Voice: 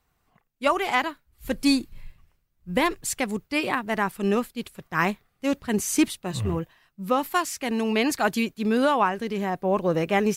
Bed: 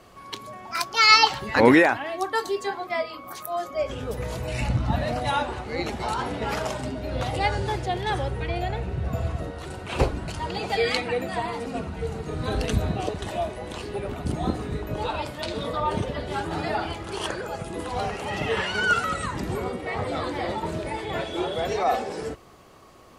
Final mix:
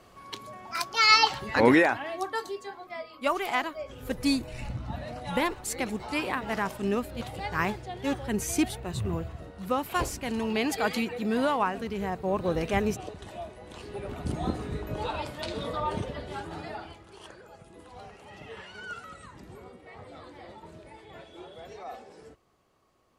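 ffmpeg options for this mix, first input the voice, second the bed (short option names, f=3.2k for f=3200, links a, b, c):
-filter_complex "[0:a]adelay=2600,volume=-5dB[a];[1:a]volume=3.5dB,afade=t=out:st=2.16:d=0.49:silence=0.421697,afade=t=in:st=13.64:d=0.62:silence=0.421697,afade=t=out:st=15.72:d=1.37:silence=0.199526[b];[a][b]amix=inputs=2:normalize=0"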